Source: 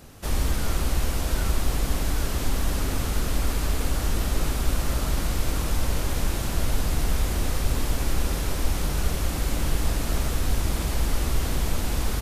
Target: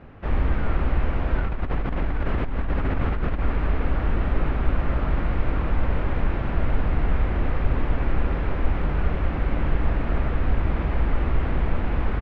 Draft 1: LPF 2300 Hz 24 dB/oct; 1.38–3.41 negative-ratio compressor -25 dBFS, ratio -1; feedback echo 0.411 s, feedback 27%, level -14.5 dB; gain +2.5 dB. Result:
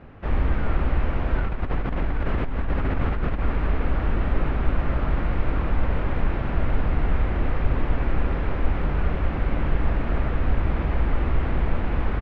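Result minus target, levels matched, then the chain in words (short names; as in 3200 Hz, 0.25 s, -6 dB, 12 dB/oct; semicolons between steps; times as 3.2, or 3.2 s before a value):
echo-to-direct +8.5 dB
LPF 2300 Hz 24 dB/oct; 1.38–3.41 negative-ratio compressor -25 dBFS, ratio -1; feedback echo 0.411 s, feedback 27%, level -23 dB; gain +2.5 dB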